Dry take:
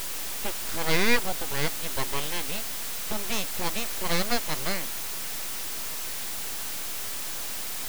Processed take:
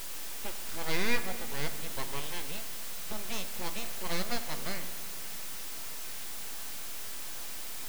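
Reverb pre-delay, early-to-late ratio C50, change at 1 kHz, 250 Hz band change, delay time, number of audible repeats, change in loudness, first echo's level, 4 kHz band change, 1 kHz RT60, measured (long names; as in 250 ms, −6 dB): 3 ms, 11.0 dB, −7.5 dB, −7.0 dB, no echo audible, no echo audible, −7.5 dB, no echo audible, −7.5 dB, 1.7 s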